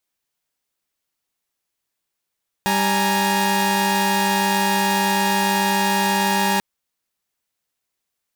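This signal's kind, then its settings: chord G3/G#5/A#5 saw, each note -19 dBFS 3.94 s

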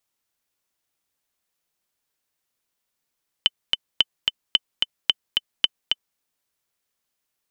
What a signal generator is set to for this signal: metronome 220 bpm, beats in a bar 2, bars 5, 3.04 kHz, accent 3.5 dB -2.5 dBFS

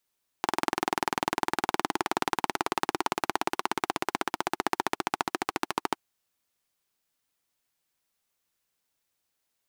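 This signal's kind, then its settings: single-cylinder engine model, changing speed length 5.56 s, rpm 2500, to 1600, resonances 350/830 Hz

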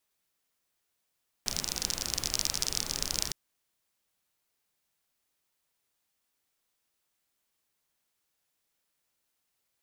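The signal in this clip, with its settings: rain from filtered ticks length 1.86 s, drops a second 36, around 5.4 kHz, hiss -6.5 dB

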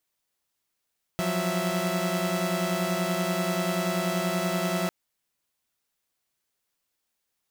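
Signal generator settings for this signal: chord F3/F#3/E5 saw, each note -27 dBFS 3.70 s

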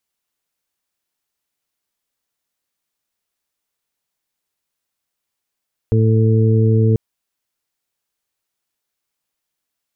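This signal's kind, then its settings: steady additive tone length 1.04 s, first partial 111 Hz, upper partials -8/-13/-8 dB, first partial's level -11.5 dB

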